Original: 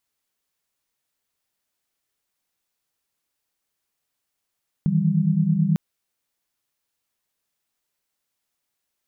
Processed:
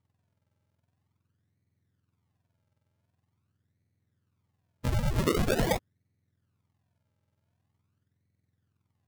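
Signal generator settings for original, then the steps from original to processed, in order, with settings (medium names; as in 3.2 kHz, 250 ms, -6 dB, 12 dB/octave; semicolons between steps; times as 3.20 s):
chord D#3/E3/G3 sine, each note -21.5 dBFS 0.90 s
spectrum inverted on a logarithmic axis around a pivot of 760 Hz; decimation with a swept rate 41×, swing 100% 0.45 Hz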